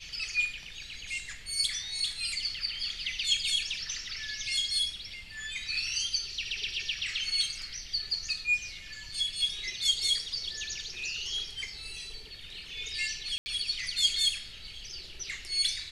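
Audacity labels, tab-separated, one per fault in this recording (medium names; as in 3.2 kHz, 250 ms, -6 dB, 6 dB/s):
13.380000	13.460000	dropout 80 ms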